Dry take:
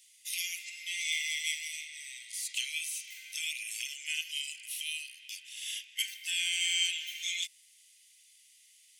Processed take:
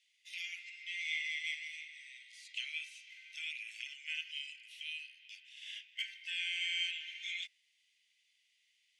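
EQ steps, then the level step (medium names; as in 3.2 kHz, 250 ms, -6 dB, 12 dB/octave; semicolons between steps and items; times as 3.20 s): low-pass 3 kHz 12 dB/octave; dynamic bell 1.4 kHz, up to +6 dB, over -52 dBFS, Q 1.1; -4.5 dB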